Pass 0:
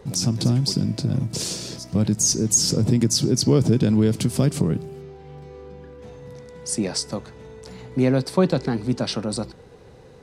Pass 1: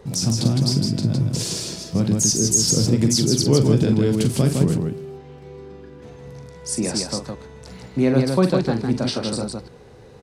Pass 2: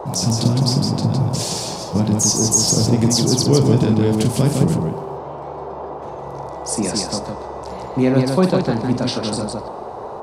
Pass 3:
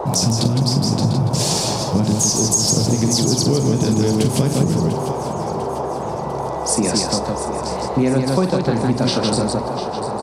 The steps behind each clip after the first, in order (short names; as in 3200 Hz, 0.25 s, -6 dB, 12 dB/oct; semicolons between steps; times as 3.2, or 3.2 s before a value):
loudspeakers at several distances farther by 15 m -8 dB, 55 m -4 dB
band noise 340–990 Hz -33 dBFS; on a send at -23 dB: reverb RT60 3.9 s, pre-delay 40 ms; on the sum: gain +2 dB
compressor, threshold -19 dBFS, peak gain reduction 10 dB; on a send: feedback echo 0.697 s, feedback 54%, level -12 dB; on the sum: gain +5.5 dB